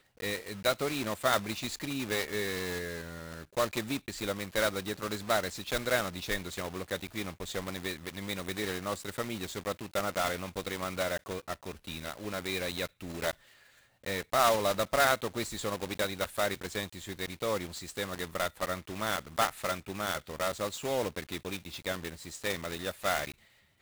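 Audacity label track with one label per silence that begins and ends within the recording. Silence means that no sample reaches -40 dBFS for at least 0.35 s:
13.320000	14.060000	silence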